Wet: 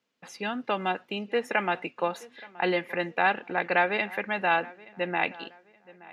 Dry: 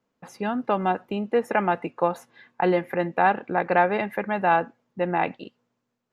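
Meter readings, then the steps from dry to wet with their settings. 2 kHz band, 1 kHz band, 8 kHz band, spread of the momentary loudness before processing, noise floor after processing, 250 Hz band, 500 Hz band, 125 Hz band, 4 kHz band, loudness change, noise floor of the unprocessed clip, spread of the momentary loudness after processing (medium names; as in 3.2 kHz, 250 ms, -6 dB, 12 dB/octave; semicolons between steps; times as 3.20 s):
+1.5 dB, -5.5 dB, no reading, 8 LU, -63 dBFS, -6.5 dB, -5.5 dB, -8.0 dB, +6.5 dB, -3.5 dB, -79 dBFS, 14 LU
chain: frequency weighting D; on a send: filtered feedback delay 874 ms, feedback 35%, low-pass 3.1 kHz, level -21 dB; on the sum: trim -5 dB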